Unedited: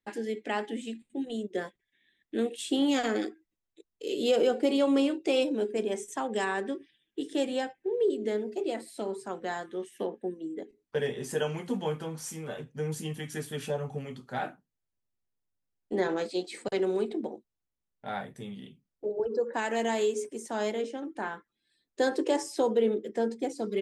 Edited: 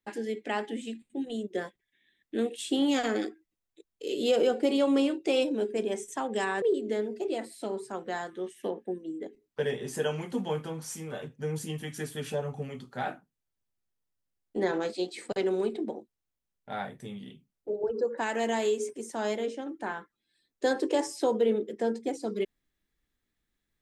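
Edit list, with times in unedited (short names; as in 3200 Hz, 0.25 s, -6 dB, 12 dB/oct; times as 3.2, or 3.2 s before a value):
6.62–7.98 cut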